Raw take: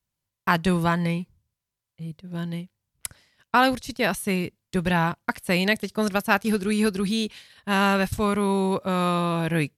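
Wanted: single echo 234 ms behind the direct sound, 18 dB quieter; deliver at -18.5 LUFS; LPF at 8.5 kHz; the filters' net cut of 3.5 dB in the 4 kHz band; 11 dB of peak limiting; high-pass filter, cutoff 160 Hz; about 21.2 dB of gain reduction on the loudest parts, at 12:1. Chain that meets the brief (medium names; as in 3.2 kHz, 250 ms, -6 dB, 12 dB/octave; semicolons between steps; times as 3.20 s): high-pass 160 Hz; low-pass 8.5 kHz; peaking EQ 4 kHz -4.5 dB; compression 12:1, threshold -36 dBFS; peak limiter -30.5 dBFS; delay 234 ms -18 dB; trim +24 dB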